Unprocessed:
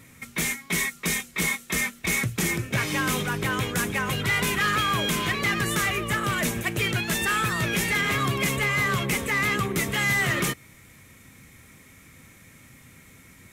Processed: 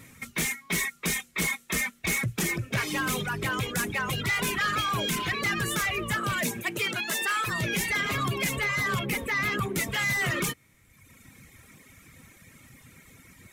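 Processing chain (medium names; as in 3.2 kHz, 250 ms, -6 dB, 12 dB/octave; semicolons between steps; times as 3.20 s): 8.99–9.62 s: peaking EQ 7.1 kHz -7 dB 1.2 oct; saturation -22 dBFS, distortion -17 dB; reverb removal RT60 1.2 s; 6.41–7.46 s: high-pass 120 Hz -> 480 Hz 12 dB/octave; trim +1 dB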